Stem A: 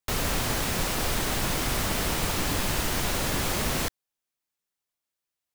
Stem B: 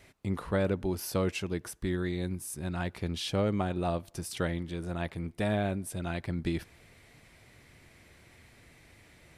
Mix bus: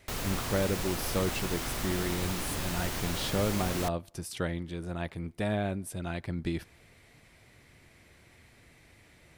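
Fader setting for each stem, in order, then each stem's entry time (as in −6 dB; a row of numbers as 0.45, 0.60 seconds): −7.5, −1.0 decibels; 0.00, 0.00 seconds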